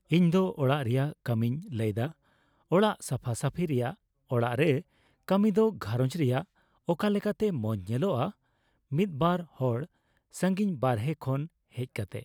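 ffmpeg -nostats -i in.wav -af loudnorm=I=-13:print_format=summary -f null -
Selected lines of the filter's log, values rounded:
Input Integrated:    -29.7 LUFS
Input True Peak:     -12.9 dBTP
Input LRA:             3.2 LU
Input Threshold:     -40.1 LUFS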